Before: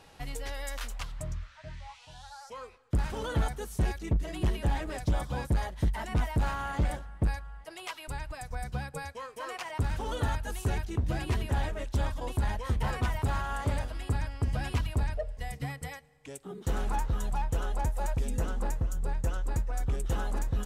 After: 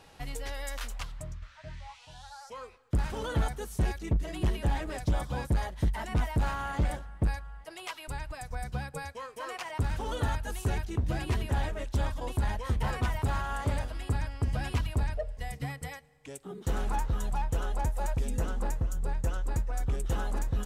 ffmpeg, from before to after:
-filter_complex "[0:a]asplit=2[a][b];[a]atrim=end=1.42,asetpts=PTS-STARTPTS,afade=t=out:st=1:d=0.42:silence=0.446684[c];[b]atrim=start=1.42,asetpts=PTS-STARTPTS,afade=t=in:d=0.004:c=hsin:silence=0.446684[d];[c][d]concat=n=2:v=0:a=1"

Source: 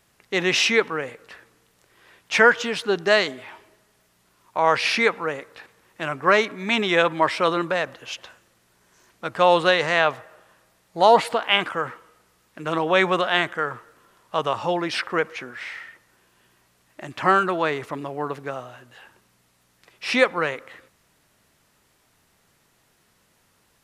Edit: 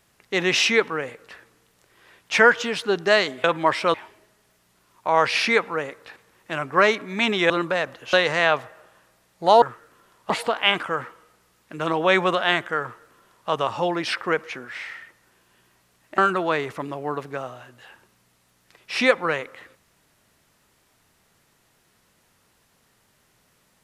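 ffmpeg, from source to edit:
-filter_complex "[0:a]asplit=8[a][b][c][d][e][f][g][h];[a]atrim=end=3.442[i];[b]atrim=start=6.998:end=7.502[j];[c]atrim=start=3.438:end=7.002[k];[d]atrim=start=7.498:end=8.132[l];[e]atrim=start=9.668:end=11.162[m];[f]atrim=start=13.668:end=14.352[n];[g]atrim=start=11.158:end=17.042[o];[h]atrim=start=17.308[p];[i][j]acrossfade=d=0.004:c1=hsin:c2=hsin[q];[q][k]acrossfade=d=0.004:c1=hsin:c2=hsin[r];[r][l]acrossfade=d=0.004:c1=hsin:c2=hsin[s];[s][m]acrossfade=d=0.004:c1=hsin:c2=hsin[t];[t][n]acrossfade=d=0.004:c1=hsin:c2=hsin[u];[u][o]acrossfade=d=0.004:c1=hsin:c2=hsin[v];[v][p]acrossfade=d=0.004:c1=hsin:c2=hsin"

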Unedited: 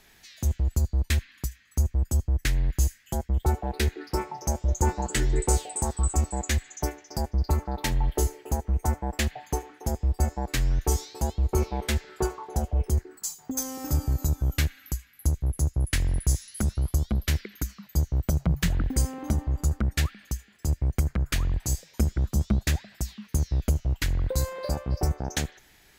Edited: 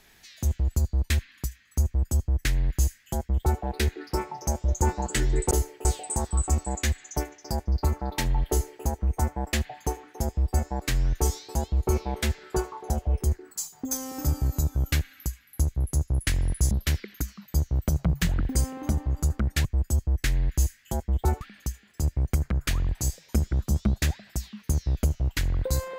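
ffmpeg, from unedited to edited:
-filter_complex "[0:a]asplit=6[a][b][c][d][e][f];[a]atrim=end=5.512[g];[b]atrim=start=8.158:end=8.502[h];[c]atrim=start=5.508:end=16.372[i];[d]atrim=start=17.118:end=20.062[j];[e]atrim=start=1.858:end=3.622[k];[f]atrim=start=20.058[l];[g][h]acrossfade=d=0.004:c1=hsin:c2=hsin[m];[m][i]acrossfade=d=0.004:c1=hsin:c2=hsin[n];[n][j]acrossfade=d=0.004:c1=hsin:c2=hsin[o];[o][k]acrossfade=d=0.004:c1=hsin:c2=hsin[p];[p][l]acrossfade=d=0.004:c1=hsin:c2=hsin"

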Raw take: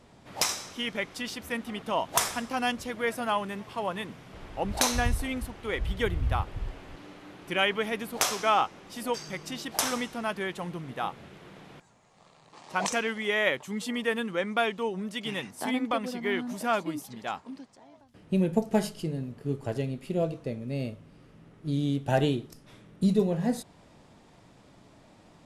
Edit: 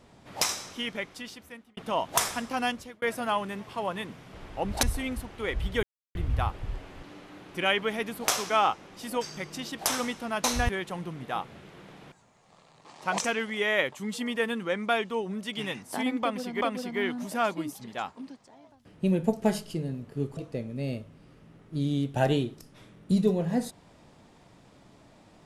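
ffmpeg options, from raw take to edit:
-filter_complex "[0:a]asplit=9[a][b][c][d][e][f][g][h][i];[a]atrim=end=1.77,asetpts=PTS-STARTPTS,afade=t=out:st=0.75:d=1.02[j];[b]atrim=start=1.77:end=3.02,asetpts=PTS-STARTPTS,afade=t=in:d=0.004:c=hsin,afade=t=out:st=0.88:d=0.37[k];[c]atrim=start=3.02:end=4.832,asetpts=PTS-STARTPTS,afade=t=in:d=0.004:c=hsin[l];[d]atrim=start=5.078:end=6.08,asetpts=PTS-STARTPTS,afade=t=out:st=0.998:d=0.004:c=hsin,apad=pad_dur=0.32[m];[e]atrim=start=6.08:end=10.372,asetpts=PTS-STARTPTS,afade=t=in:d=0.004:c=hsin[n];[f]atrim=start=4.828:end=5.082[o];[g]atrim=start=10.368:end=16.292[p];[h]atrim=start=15.898:end=19.662[q];[i]atrim=start=20.288[r];[j][k][l]concat=n=3:v=0:a=1[s];[m][n]concat=n=2:v=0:a=1[t];[s][t]acrossfade=d=0.004:c1=hsin:c2=hsin[u];[u][o]acrossfade=d=0.004:c1=hsin:c2=hsin[v];[v][p]acrossfade=d=0.004:c1=hsin:c2=hsin[w];[w][q]acrossfade=d=0.004:c1=hsin:c2=hsin[x];[x][r]acrossfade=d=0.004:c1=hsin:c2=hsin"

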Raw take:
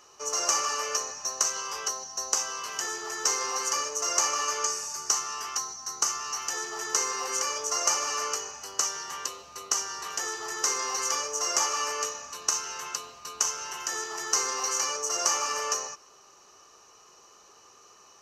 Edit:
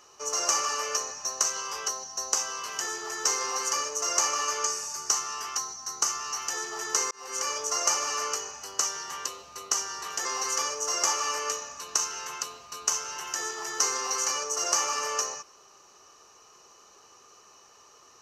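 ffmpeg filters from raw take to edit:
-filter_complex "[0:a]asplit=3[a][b][c];[a]atrim=end=7.11,asetpts=PTS-STARTPTS,afade=t=out:st=7.106:d=0.004:c=hsin[d];[b]atrim=start=7.11:end=10.252,asetpts=PTS-STARTPTS,afade=t=in:d=0.37[e];[c]atrim=start=10.778[f];[d][e]concat=n=2:v=0:a=1[g];[g][f]acrossfade=d=0.004:c1=hsin:c2=hsin"

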